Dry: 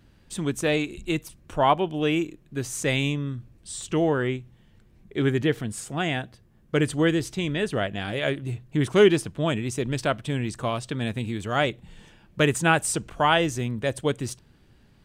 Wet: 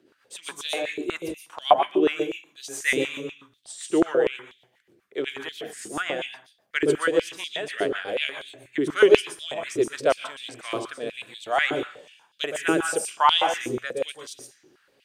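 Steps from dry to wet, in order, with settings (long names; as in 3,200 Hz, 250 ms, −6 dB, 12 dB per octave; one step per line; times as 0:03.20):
0:00.97–0:01.74: sub-octave generator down 1 octave, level +3 dB
on a send at −6.5 dB: convolution reverb RT60 0.55 s, pre-delay 117 ms
on the sum: rotating-speaker cabinet horn 7.5 Hz, later 0.65 Hz, at 0:10.02
high-pass on a step sequencer 8.2 Hz 360–3,600 Hz
level −1.5 dB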